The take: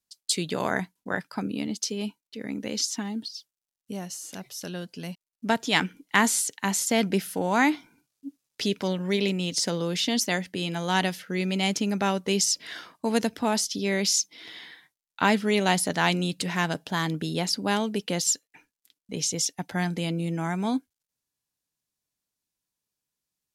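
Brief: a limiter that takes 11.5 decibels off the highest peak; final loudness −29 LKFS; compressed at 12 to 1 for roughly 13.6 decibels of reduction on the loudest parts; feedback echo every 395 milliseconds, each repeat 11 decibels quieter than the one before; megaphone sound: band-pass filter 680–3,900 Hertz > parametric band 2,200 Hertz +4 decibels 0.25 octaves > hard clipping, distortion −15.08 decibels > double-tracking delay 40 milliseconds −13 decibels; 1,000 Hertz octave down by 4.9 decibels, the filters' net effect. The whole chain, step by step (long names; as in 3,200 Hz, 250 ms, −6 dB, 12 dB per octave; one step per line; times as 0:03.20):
parametric band 1,000 Hz −4.5 dB
downward compressor 12 to 1, threshold −32 dBFS
brickwall limiter −27.5 dBFS
band-pass filter 680–3,900 Hz
parametric band 2,200 Hz +4 dB 0.25 octaves
repeating echo 395 ms, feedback 28%, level −11 dB
hard clipping −35 dBFS
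double-tracking delay 40 ms −13 dB
level +15.5 dB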